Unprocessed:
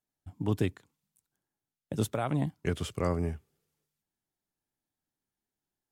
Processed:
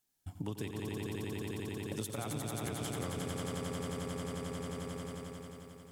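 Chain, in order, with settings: treble shelf 2.6 kHz +10.5 dB; band-stop 610 Hz, Q 18; echo with a slow build-up 89 ms, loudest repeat 5, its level -4 dB; compression 6:1, threshold -38 dBFS, peak gain reduction 16.5 dB; trim +1.5 dB

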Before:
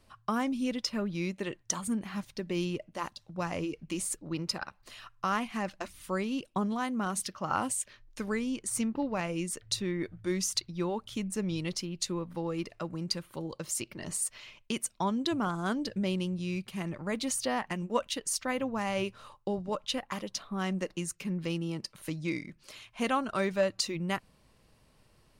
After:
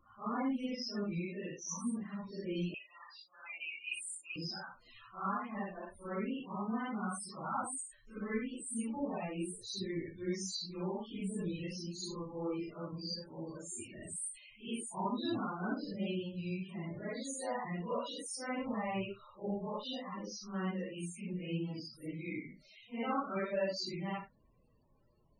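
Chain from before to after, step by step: phase randomisation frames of 200 ms; loudest bins only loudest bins 32; 2.74–4.36 s: resonant high-pass 2.4 kHz, resonance Q 8; trim -5.5 dB

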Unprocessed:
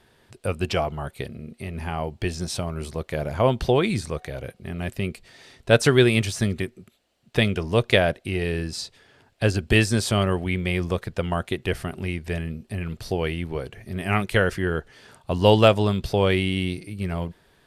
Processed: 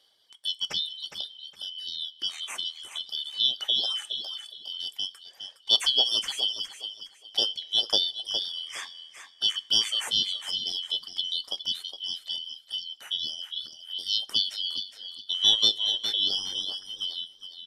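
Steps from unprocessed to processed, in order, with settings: four frequency bands reordered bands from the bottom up 3412; bass shelf 220 Hz -12 dB; on a send: feedback delay 412 ms, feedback 28%, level -8 dB; on the sum: reverb removal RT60 1.1 s; two-slope reverb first 0.22 s, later 2.8 s, from -22 dB, DRR 14 dB; trim -5.5 dB

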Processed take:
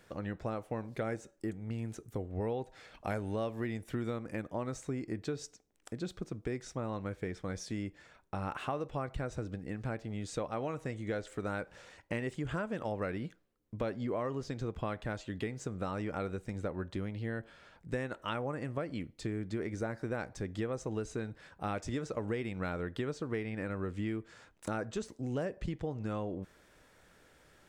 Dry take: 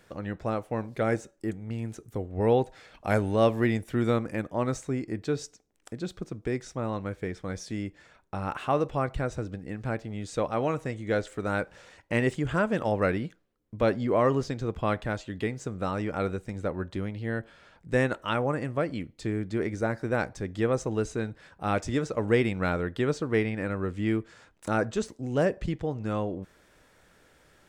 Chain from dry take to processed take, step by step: compression, threshold -30 dBFS, peak gain reduction 12.5 dB; trim -2.5 dB

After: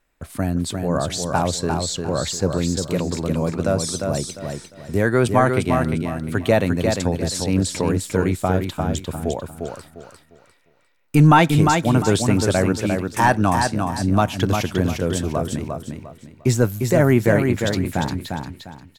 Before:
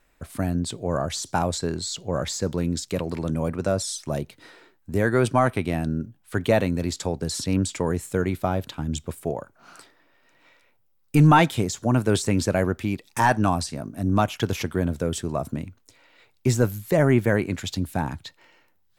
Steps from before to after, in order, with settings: gate -52 dBFS, range -8 dB; feedback delay 351 ms, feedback 29%, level -5 dB; trim +3 dB

